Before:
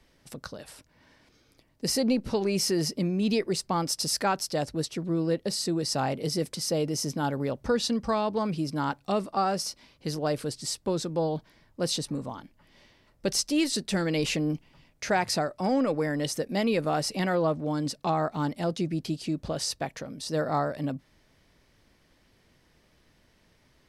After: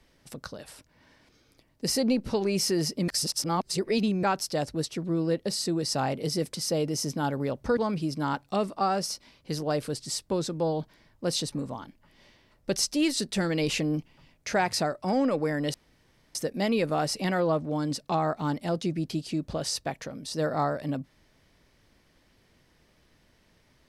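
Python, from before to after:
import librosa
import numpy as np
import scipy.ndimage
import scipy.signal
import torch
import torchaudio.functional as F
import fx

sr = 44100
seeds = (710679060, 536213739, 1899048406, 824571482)

y = fx.edit(x, sr, fx.reverse_span(start_s=3.08, length_s=1.15),
    fx.cut(start_s=7.77, length_s=0.56),
    fx.insert_room_tone(at_s=16.3, length_s=0.61), tone=tone)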